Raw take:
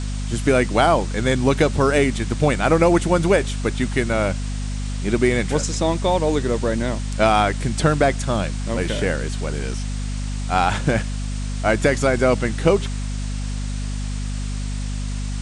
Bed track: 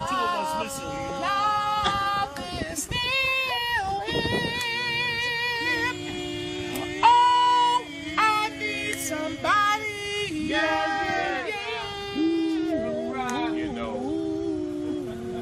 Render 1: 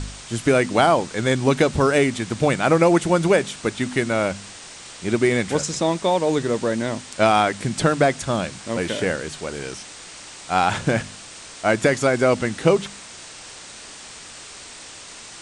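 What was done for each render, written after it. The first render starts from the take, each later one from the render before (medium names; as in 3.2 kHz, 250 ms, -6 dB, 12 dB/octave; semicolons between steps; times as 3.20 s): de-hum 50 Hz, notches 5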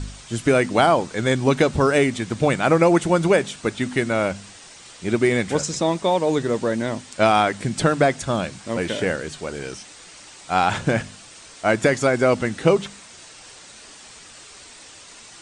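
noise reduction 6 dB, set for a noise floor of -40 dBFS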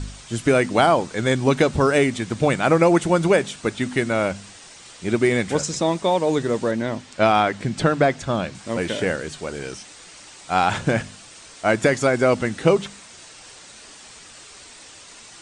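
6.71–8.55 s: distance through air 67 m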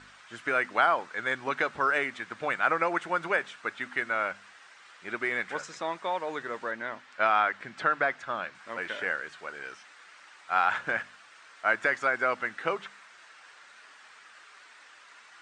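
band-pass filter 1.5 kHz, Q 2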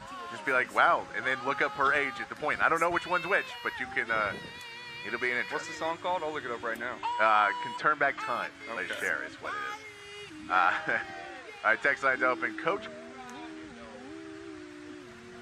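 add bed track -16.5 dB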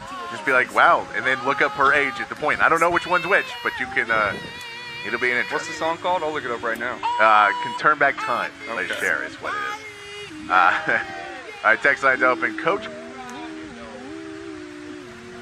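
trim +9 dB; peak limiter -3 dBFS, peak gain reduction 2 dB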